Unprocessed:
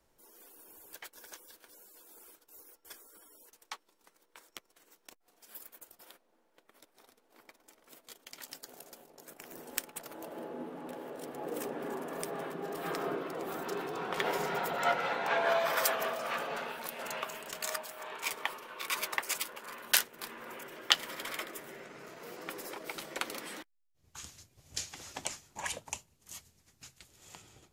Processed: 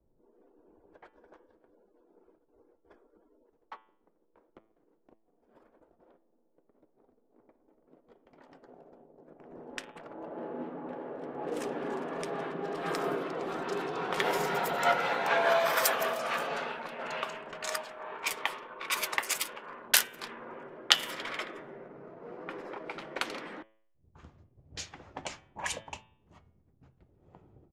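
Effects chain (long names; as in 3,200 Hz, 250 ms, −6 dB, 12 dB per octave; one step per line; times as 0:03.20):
low-pass that shuts in the quiet parts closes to 400 Hz, open at −31.5 dBFS
downsampling to 32,000 Hz
hum removal 109.9 Hz, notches 33
level +3.5 dB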